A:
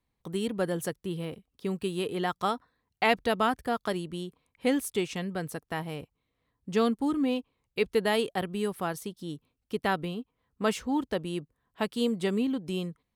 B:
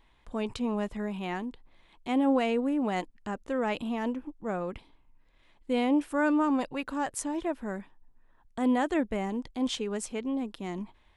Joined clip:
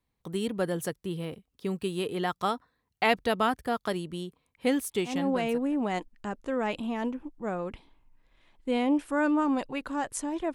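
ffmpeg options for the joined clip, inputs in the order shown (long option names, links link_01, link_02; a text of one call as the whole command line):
ffmpeg -i cue0.wav -i cue1.wav -filter_complex "[0:a]apad=whole_dur=10.54,atrim=end=10.54,atrim=end=5.77,asetpts=PTS-STARTPTS[link_01];[1:a]atrim=start=1.89:end=7.56,asetpts=PTS-STARTPTS[link_02];[link_01][link_02]acrossfade=duration=0.9:curve1=qsin:curve2=qsin" out.wav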